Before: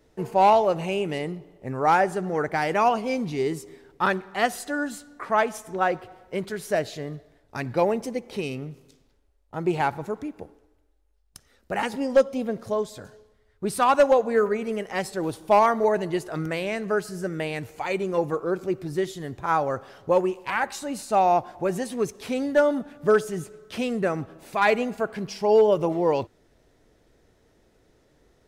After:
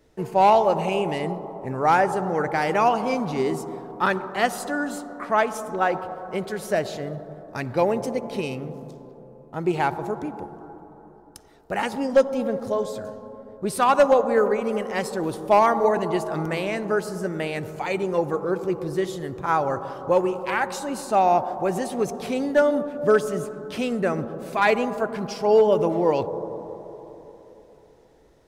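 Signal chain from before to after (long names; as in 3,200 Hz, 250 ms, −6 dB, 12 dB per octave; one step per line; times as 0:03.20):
on a send: inverse Chebyshev low-pass filter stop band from 5,300 Hz, stop band 70 dB + convolution reverb RT60 3.7 s, pre-delay 73 ms, DRR 12.5 dB
on the sum: level +1 dB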